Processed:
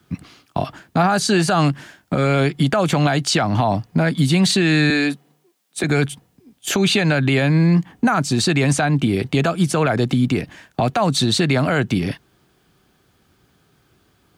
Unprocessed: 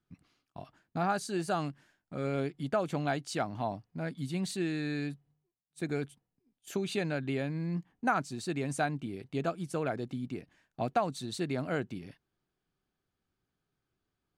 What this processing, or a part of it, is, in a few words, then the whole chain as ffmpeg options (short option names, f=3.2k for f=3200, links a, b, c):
mastering chain: -filter_complex "[0:a]highpass=49,equalizer=f=3.3k:t=o:w=0.23:g=2,acrossover=split=200|650|6500[a][b][c][d];[a]acompressor=threshold=-38dB:ratio=4[e];[b]acompressor=threshold=-44dB:ratio=4[f];[c]acompressor=threshold=-34dB:ratio=4[g];[d]acompressor=threshold=-56dB:ratio=4[h];[e][f][g][h]amix=inputs=4:normalize=0,acompressor=threshold=-39dB:ratio=2,alimiter=level_in=32.5dB:limit=-1dB:release=50:level=0:latency=1,asettb=1/sr,asplit=3[i][j][k];[i]atrim=end=4.904[l];[j]atrim=start=4.9:end=5.84,asetpts=PTS-STARTPTS,afade=t=in:d=0.004:c=qsin,afade=t=out:st=0.936:d=0.004:c=qsin,highpass=f=220:w=0.5412,highpass=f=220:w=1.3066[m];[k]atrim=start=5.836[n];[l][m]acrossfade=d=0.004:c1=hsin:c2=qsin[o];[o][n]acrossfade=d=0.004:c1=qsin:c2=hsin,volume=-7dB"